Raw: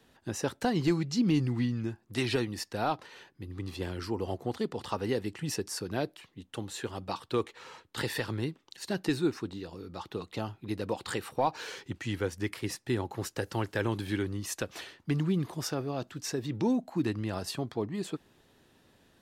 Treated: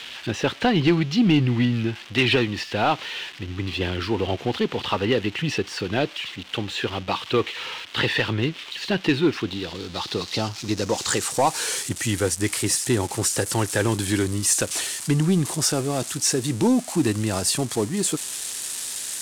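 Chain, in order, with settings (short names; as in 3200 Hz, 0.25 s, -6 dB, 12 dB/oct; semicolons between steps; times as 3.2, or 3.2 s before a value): switching spikes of -31 dBFS; low-pass sweep 3000 Hz -> 8700 Hz, 9.38–11.57; sample leveller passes 1; gain +5.5 dB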